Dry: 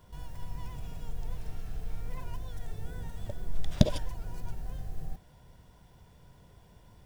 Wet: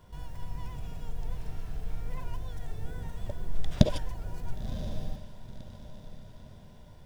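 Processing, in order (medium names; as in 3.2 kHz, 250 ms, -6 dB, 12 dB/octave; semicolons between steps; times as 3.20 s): treble shelf 6.3 kHz -4.5 dB; on a send: echo that smears into a reverb 1032 ms, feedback 40%, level -12.5 dB; on the sum: trim +1.5 dB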